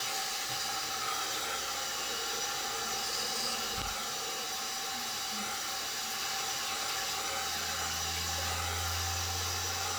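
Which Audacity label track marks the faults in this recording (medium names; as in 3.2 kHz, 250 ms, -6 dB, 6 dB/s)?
3.910000	6.200000	clipped -32 dBFS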